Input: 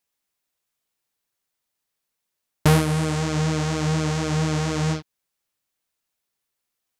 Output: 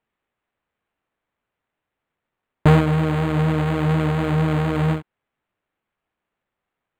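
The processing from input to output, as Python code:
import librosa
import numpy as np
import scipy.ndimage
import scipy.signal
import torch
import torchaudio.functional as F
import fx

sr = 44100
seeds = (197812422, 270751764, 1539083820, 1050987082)

y = scipy.signal.sosfilt(scipy.signal.butter(2, 8700.0, 'lowpass', fs=sr, output='sos'), x)
y = np.interp(np.arange(len(y)), np.arange(len(y))[::8], y[::8])
y = y * 10.0 ** (3.5 / 20.0)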